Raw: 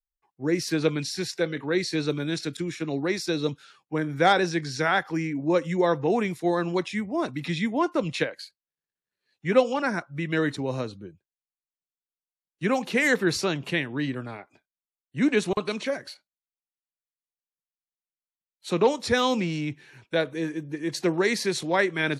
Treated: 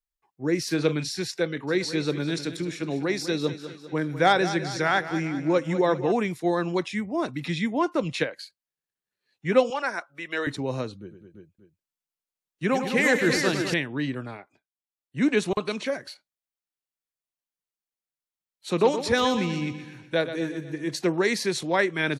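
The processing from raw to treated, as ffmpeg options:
ffmpeg -i in.wav -filter_complex "[0:a]asplit=3[link_01][link_02][link_03];[link_01]afade=type=out:start_time=0.69:duration=0.02[link_04];[link_02]asplit=2[link_05][link_06];[link_06]adelay=40,volume=-12dB[link_07];[link_05][link_07]amix=inputs=2:normalize=0,afade=type=in:start_time=0.69:duration=0.02,afade=type=out:start_time=1.13:duration=0.02[link_08];[link_03]afade=type=in:start_time=1.13:duration=0.02[link_09];[link_04][link_08][link_09]amix=inputs=3:normalize=0,asplit=3[link_10][link_11][link_12];[link_10]afade=type=out:start_time=1.67:duration=0.02[link_13];[link_11]aecho=1:1:200|400|600|800|1000:0.237|0.123|0.0641|0.0333|0.0173,afade=type=in:start_time=1.67:duration=0.02,afade=type=out:start_time=6.11:duration=0.02[link_14];[link_12]afade=type=in:start_time=6.11:duration=0.02[link_15];[link_13][link_14][link_15]amix=inputs=3:normalize=0,asettb=1/sr,asplit=3[link_16][link_17][link_18];[link_16]atrim=end=9.704[link_19];[link_17]atrim=start=9.7:end=10.47,asetpts=PTS-STARTPTS,afade=type=in:duration=0.004:curve=qsin,afade=type=out:start_time=0.766:duration=0.004:curve=qsin,highpass=540[link_20];[link_18]atrim=start=10.466[link_21];[link_19][link_20]acrossfade=duration=0.004:curve1=hsin:curve2=qsin[link_22];[link_22][link_21]acrossfade=duration=0.004:curve1=qsin:curve2=hsin,asettb=1/sr,asplit=3[link_23][link_24][link_25];[link_23]atrim=end=11.004[link_26];[link_24]atrim=start=11:end=13.74,asetpts=PTS-STARTPTS,afade=type=in:duration=0.004:curve=qsin,afade=type=out:start_time=2.736:duration=0.004:curve=qsin,aecho=1:1:103|208|342|583:0.355|0.355|0.473|0.168,atrim=end_sample=120834[link_27];[link_25]atrim=start=13.736[link_28];[link_26][link_27]acrossfade=duration=0.004:curve1=hsin:curve2=qsin[link_29];[link_29][link_28]acrossfade=duration=0.004:curve1=qsin:curve2=hsin,asplit=3[link_30][link_31][link_32];[link_30]afade=type=out:start_time=18.77:duration=0.02[link_33];[link_31]aecho=1:1:123|246|369|492|615|738:0.282|0.147|0.0762|0.0396|0.0206|0.0107,afade=type=in:start_time=18.77:duration=0.02,afade=type=out:start_time=20.95:duration=0.02[link_34];[link_32]afade=type=in:start_time=20.95:duration=0.02[link_35];[link_33][link_34][link_35]amix=inputs=3:normalize=0,asplit=3[link_36][link_37][link_38];[link_36]atrim=end=14.74,asetpts=PTS-STARTPTS,afade=type=out:start_time=14.29:duration=0.45:silence=0.177828[link_39];[link_37]atrim=start=14.74:end=14.76,asetpts=PTS-STARTPTS,volume=-15dB[link_40];[link_38]atrim=start=14.76,asetpts=PTS-STARTPTS,afade=type=in:duration=0.45:silence=0.177828[link_41];[link_39][link_40][link_41]concat=n=3:v=0:a=1" out.wav

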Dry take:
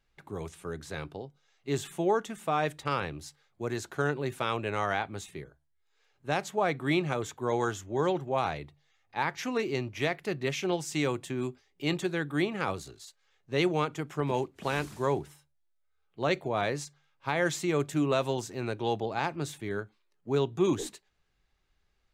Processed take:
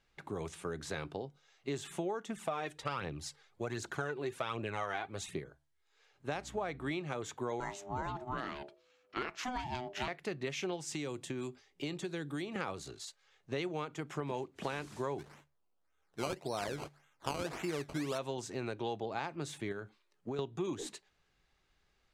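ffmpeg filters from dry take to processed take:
ffmpeg -i in.wav -filter_complex "[0:a]asplit=3[link_01][link_02][link_03];[link_01]afade=type=out:start_time=2.28:duration=0.02[link_04];[link_02]aphaser=in_gain=1:out_gain=1:delay=3:decay=0.52:speed=1.3:type=triangular,afade=type=in:start_time=2.28:duration=0.02,afade=type=out:start_time=5.38:duration=0.02[link_05];[link_03]afade=type=in:start_time=5.38:duration=0.02[link_06];[link_04][link_05][link_06]amix=inputs=3:normalize=0,asettb=1/sr,asplit=3[link_07][link_08][link_09];[link_07]atrim=end=6.344[link_10];[link_08]atrim=start=6.34:end=6.92,asetpts=PTS-STARTPTS,afade=type=in:duration=0.004:curve=qsin,afade=type=out:start_time=0.576:duration=0.004:curve=qsin,aeval=exprs='val(0)+0.00631*(sin(2*PI*60*n/s)+sin(2*PI*2*60*n/s)/2+sin(2*PI*3*60*n/s)/3+sin(2*PI*4*60*n/s)/4+sin(2*PI*5*60*n/s)/5)':channel_layout=same[link_11];[link_09]atrim=start=6.916[link_12];[link_10][link_11]acrossfade=duration=0.004:curve1=hsin:curve2=qsin[link_13];[link_13][link_12]acrossfade=duration=0.004:curve1=qsin:curve2=hsin,asettb=1/sr,asplit=3[link_14][link_15][link_16];[link_14]atrim=end=7.604[link_17];[link_15]atrim=start=7.6:end=10.08,asetpts=PTS-STARTPTS,afade=type=in:duration=0.004:curve=qsin,afade=type=out:start_time=2.476:duration=0.004:curve=qsin,aeval=exprs='val(0)*sin(2*PI*500*n/s)':channel_layout=same[link_18];[link_16]atrim=start=10.076[link_19];[link_17][link_18]acrossfade=duration=0.004:curve1=hsin:curve2=qsin[link_20];[link_20][link_19]acrossfade=duration=0.004:curve1=qsin:curve2=hsin,asettb=1/sr,asplit=3[link_21][link_22][link_23];[link_21]atrim=end=10.924[link_24];[link_22]atrim=start=10.92:end=12.56,asetpts=PTS-STARTPTS,afade=type=in:duration=0.004:curve=qsin,afade=type=out:start_time=1.636:duration=0.004:curve=qsin,acrossover=split=550|3400[link_25][link_26][link_27];[link_25]acompressor=threshold=-37dB:ratio=4[link_28];[link_26]acompressor=threshold=-49dB:ratio=4[link_29];[link_27]acompressor=threshold=-48dB:ratio=4[link_30];[link_28][link_29][link_30]amix=inputs=3:normalize=0[link_31];[link_23]atrim=start=12.556[link_32];[link_24][link_31]acrossfade=duration=0.004:curve1=hsin:curve2=qsin[link_33];[link_33][link_32]acrossfade=duration=0.004:curve1=qsin:curve2=hsin,asplit=3[link_34][link_35][link_36];[link_34]afade=type=out:start_time=15.18:duration=0.02[link_37];[link_35]acrusher=samples=17:mix=1:aa=0.000001:lfo=1:lforange=17:lforate=1.8,afade=type=in:start_time=15.18:duration=0.02,afade=type=out:start_time=18.17:duration=0.02[link_38];[link_36]afade=type=in:start_time=18.17:duration=0.02[link_39];[link_37][link_38][link_39]amix=inputs=3:normalize=0,asettb=1/sr,asplit=3[link_40][link_41][link_42];[link_40]atrim=end=19.724[link_43];[link_41]atrim=start=19.72:end=20.39,asetpts=PTS-STARTPTS,afade=type=in:duration=0.004:curve=qsin,afade=type=out:start_time=0.666:duration=0.004:curve=qsin,acompressor=threshold=-35dB:ratio=6:attack=3.2:release=140:knee=1:detection=peak[link_44];[link_42]atrim=start=20.386[link_45];[link_43][link_44]acrossfade=duration=0.004:curve1=hsin:curve2=qsin[link_46];[link_46][link_45]acrossfade=duration=0.004:curve1=qsin:curve2=hsin,lowpass=9700,acompressor=threshold=-37dB:ratio=6,lowshelf=frequency=100:gain=-7,volume=3dB" out.wav

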